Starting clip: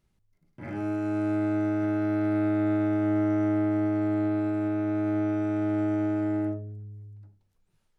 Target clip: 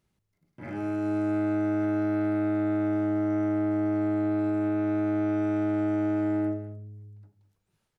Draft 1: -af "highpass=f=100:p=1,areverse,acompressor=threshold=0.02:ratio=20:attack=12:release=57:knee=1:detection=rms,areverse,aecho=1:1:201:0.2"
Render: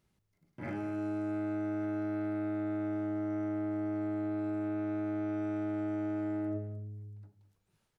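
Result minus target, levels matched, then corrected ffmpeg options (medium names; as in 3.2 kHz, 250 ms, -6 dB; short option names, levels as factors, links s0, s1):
compression: peak gain reduction +8 dB
-af "highpass=f=100:p=1,areverse,acompressor=threshold=0.0531:ratio=20:attack=12:release=57:knee=1:detection=rms,areverse,aecho=1:1:201:0.2"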